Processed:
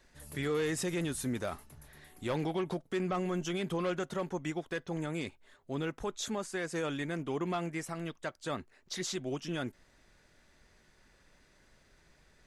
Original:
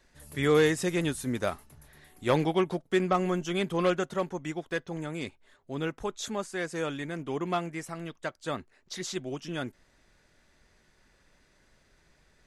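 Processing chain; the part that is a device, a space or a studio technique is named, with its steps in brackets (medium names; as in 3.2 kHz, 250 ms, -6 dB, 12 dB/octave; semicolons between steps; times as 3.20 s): soft clipper into limiter (saturation -18.5 dBFS, distortion -17 dB; peak limiter -26.5 dBFS, peak gain reduction 7.5 dB)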